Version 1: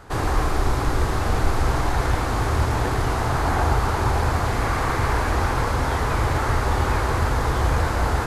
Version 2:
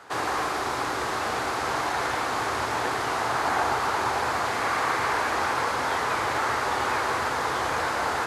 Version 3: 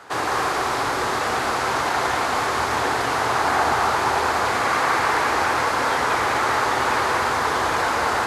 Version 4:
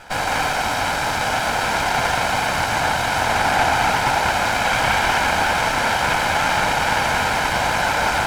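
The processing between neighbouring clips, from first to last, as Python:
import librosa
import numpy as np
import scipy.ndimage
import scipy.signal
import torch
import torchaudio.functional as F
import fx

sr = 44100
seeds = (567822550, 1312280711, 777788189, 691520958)

y1 = fx.weighting(x, sr, curve='A')
y2 = y1 + 10.0 ** (-5.0 / 20.0) * np.pad(y1, (int(194 * sr / 1000.0), 0))[:len(y1)]
y2 = F.gain(torch.from_numpy(y2), 4.0).numpy()
y3 = fx.lower_of_two(y2, sr, delay_ms=1.3)
y3 = F.gain(torch.from_numpy(y3), 3.5).numpy()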